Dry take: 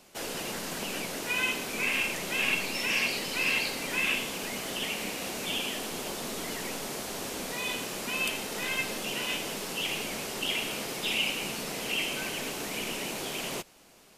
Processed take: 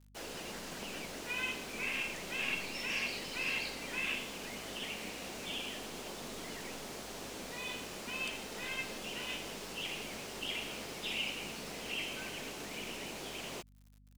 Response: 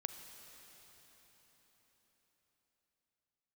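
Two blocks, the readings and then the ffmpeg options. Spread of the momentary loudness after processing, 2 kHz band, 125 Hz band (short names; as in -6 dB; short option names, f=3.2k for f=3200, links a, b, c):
8 LU, -8.0 dB, -7.0 dB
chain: -filter_complex "[0:a]acrossover=split=8400[a][b];[b]acompressor=threshold=-51dB:ratio=4:attack=1:release=60[c];[a][c]amix=inputs=2:normalize=0,acrusher=bits=7:mix=0:aa=0.000001,aeval=exprs='val(0)+0.00251*(sin(2*PI*50*n/s)+sin(2*PI*2*50*n/s)/2+sin(2*PI*3*50*n/s)/3+sin(2*PI*4*50*n/s)/4+sin(2*PI*5*50*n/s)/5)':c=same,volume=-8dB"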